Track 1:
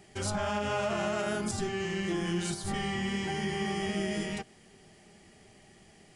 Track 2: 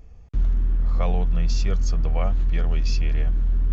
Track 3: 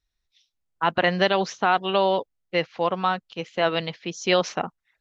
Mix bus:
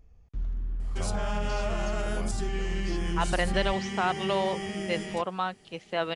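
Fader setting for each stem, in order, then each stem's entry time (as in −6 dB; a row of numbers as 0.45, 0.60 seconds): −2.0, −11.0, −7.0 decibels; 0.80, 0.00, 2.35 seconds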